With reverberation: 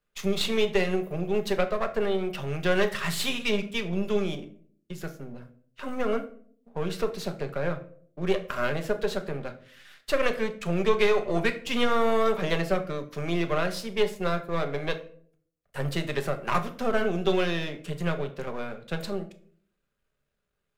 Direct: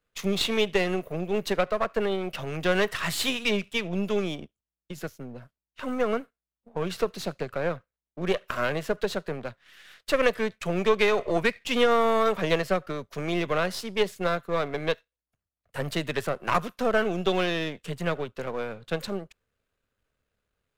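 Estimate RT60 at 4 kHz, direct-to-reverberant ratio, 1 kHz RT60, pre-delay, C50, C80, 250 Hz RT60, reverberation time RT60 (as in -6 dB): 0.35 s, 6.0 dB, 0.45 s, 5 ms, 13.5 dB, 17.5 dB, 0.75 s, 0.55 s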